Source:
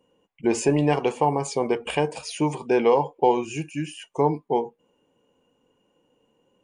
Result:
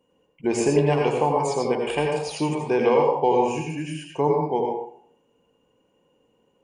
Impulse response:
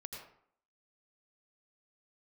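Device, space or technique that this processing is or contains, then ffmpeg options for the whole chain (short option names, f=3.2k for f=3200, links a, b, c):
bathroom: -filter_complex "[1:a]atrim=start_sample=2205[a];[0:a][a]afir=irnorm=-1:irlink=0,volume=4dB"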